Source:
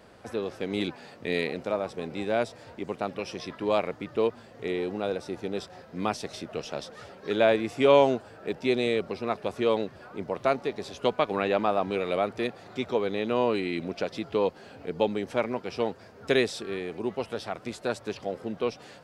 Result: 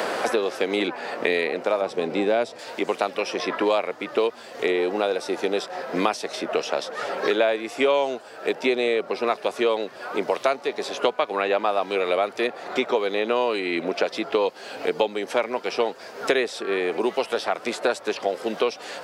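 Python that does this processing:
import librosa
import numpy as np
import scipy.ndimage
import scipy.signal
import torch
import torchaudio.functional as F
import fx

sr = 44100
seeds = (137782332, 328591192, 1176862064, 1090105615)

y = fx.tilt_eq(x, sr, slope=-3.0, at=(1.81, 2.59))
y = scipy.signal.sosfilt(scipy.signal.butter(2, 420.0, 'highpass', fs=sr, output='sos'), y)
y = fx.band_squash(y, sr, depth_pct=100)
y = y * librosa.db_to_amplitude(6.0)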